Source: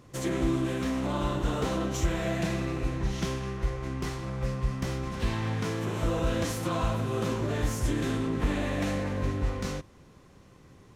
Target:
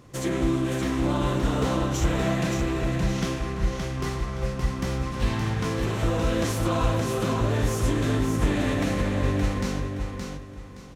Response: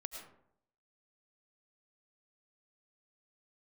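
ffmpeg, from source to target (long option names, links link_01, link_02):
-filter_complex "[0:a]asplit=2[link_01][link_02];[link_02]aecho=0:1:570|1140|1710|2280:0.562|0.163|0.0473|0.0137[link_03];[link_01][link_03]amix=inputs=2:normalize=0,asettb=1/sr,asplit=3[link_04][link_05][link_06];[link_04]atrim=end=2.504[link_07];[link_05]atrim=start=2.5:end=2.97,asetpts=PTS-STARTPTS,afade=type=in:duration=0.004:curve=qsin,afade=type=out:start_time=0.466:duration=0.004:curve=qsin,asoftclip=type=hard:threshold=-21.5dB[link_08];[link_06]atrim=start=2.966[link_09];[link_07][link_08]acrossfade=duration=0.004:curve1=hsin:curve2=qsin[link_10];[link_10][link_09]acrossfade=duration=0.004:curve1=qsin:curve2=hsin,volume=3dB"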